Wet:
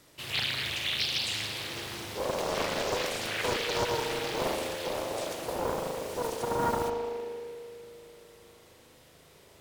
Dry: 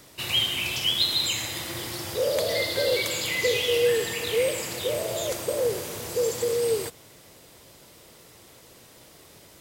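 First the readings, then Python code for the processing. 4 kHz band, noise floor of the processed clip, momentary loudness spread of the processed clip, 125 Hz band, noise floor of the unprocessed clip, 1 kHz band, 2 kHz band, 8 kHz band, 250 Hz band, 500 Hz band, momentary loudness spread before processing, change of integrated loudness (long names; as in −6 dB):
−6.5 dB, −57 dBFS, 9 LU, −3.0 dB, −52 dBFS, +6.5 dB, −4.0 dB, −8.0 dB, 0.0 dB, −7.0 dB, 9 LU, −6.0 dB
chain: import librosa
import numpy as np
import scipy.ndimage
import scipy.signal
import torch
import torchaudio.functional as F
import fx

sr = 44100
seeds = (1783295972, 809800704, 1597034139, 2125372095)

y = fx.rev_spring(x, sr, rt60_s=3.2, pass_ms=(38,), chirp_ms=30, drr_db=-1.5)
y = fx.doppler_dist(y, sr, depth_ms=0.99)
y = F.gain(torch.from_numpy(y), -8.0).numpy()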